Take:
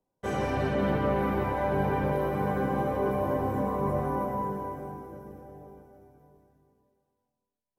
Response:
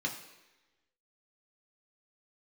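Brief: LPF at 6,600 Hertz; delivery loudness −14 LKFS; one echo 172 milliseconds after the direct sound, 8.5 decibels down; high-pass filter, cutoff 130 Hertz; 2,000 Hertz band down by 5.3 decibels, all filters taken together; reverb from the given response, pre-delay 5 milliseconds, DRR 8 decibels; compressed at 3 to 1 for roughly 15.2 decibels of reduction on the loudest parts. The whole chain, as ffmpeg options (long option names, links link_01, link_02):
-filter_complex "[0:a]highpass=130,lowpass=6600,equalizer=frequency=2000:width_type=o:gain=-7.5,acompressor=threshold=-46dB:ratio=3,aecho=1:1:172:0.376,asplit=2[link_01][link_02];[1:a]atrim=start_sample=2205,adelay=5[link_03];[link_02][link_03]afir=irnorm=-1:irlink=0,volume=-12.5dB[link_04];[link_01][link_04]amix=inputs=2:normalize=0,volume=30dB"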